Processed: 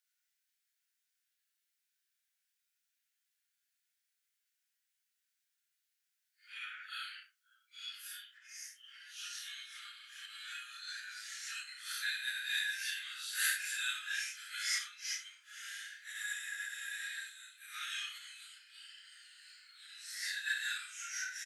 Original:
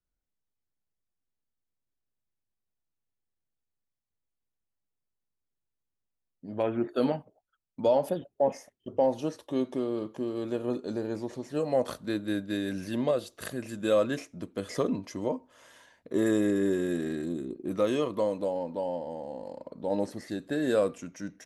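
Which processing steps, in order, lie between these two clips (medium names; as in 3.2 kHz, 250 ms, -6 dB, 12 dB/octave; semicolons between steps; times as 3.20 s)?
phase randomisation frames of 200 ms; doubling 31 ms -6 dB; compression 4:1, threshold -33 dBFS, peak gain reduction 13.5 dB; steep high-pass 1.4 kHz 96 dB/octave; trim +10.5 dB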